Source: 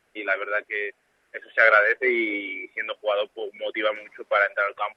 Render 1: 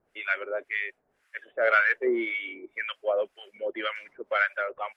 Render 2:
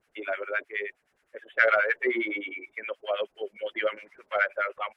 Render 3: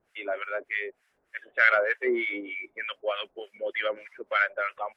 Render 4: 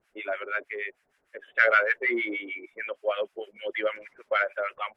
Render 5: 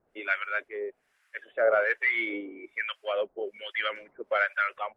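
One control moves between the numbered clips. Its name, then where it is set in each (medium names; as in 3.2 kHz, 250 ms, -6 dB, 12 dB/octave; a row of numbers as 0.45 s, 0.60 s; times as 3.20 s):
harmonic tremolo, rate: 1.9 Hz, 9.6 Hz, 3.3 Hz, 6.5 Hz, 1.2 Hz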